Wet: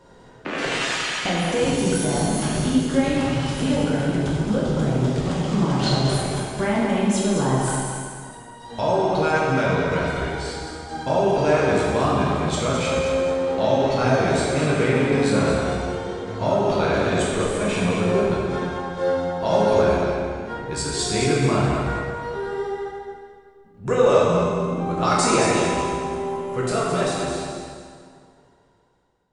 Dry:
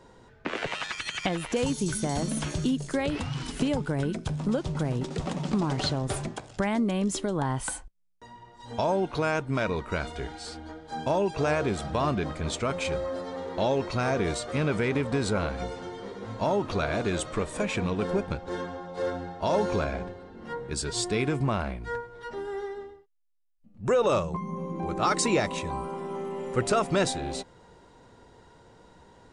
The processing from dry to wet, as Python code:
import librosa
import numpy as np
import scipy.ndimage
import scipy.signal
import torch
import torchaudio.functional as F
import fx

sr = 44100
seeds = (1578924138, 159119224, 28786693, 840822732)

y = fx.fade_out_tail(x, sr, length_s=4.03)
y = fx.high_shelf(y, sr, hz=3900.0, db=11.5, at=(0.58, 0.98))
y = fx.echo_feedback(y, sr, ms=217, feedback_pct=32, wet_db=-7.5)
y = fx.rev_plate(y, sr, seeds[0], rt60_s=1.9, hf_ratio=0.8, predelay_ms=0, drr_db=-5.5)